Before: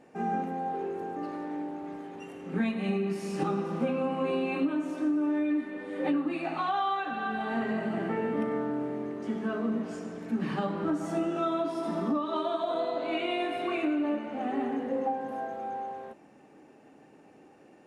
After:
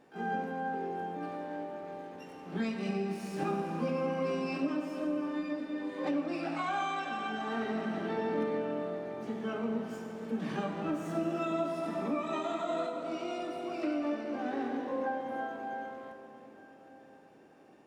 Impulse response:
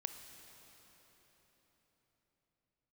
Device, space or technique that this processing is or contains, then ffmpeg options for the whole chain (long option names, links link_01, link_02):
shimmer-style reverb: -filter_complex "[0:a]asettb=1/sr,asplit=3[link_01][link_02][link_03];[link_01]atrim=end=12.894[link_04];[link_02]atrim=start=12.89:end=13.83,asetpts=PTS-STARTPTS,afade=type=in:duration=0.004:curve=qsin,afade=type=out:start_time=0.936:duration=0.004:curve=qsin,equalizer=frequency=1000:width_type=o:width=1:gain=-8,equalizer=frequency=2000:width_type=o:width=1:gain=-8,equalizer=frequency=4000:width_type=o:width=1:gain=-5[link_05];[link_03]atrim=start=13.826[link_06];[link_04][link_05]acrossfade=duration=0.004:curve1=hsin:curve2=qsin[link_07];[link_07][link_06]acrossfade=duration=0.004:curve1=qsin:curve2=hsin,asplit=2[link_08][link_09];[link_09]asetrate=88200,aresample=44100,atempo=0.5,volume=-9dB[link_10];[link_08][link_10]amix=inputs=2:normalize=0[link_11];[1:a]atrim=start_sample=2205[link_12];[link_11][link_12]afir=irnorm=-1:irlink=0,volume=-2.5dB"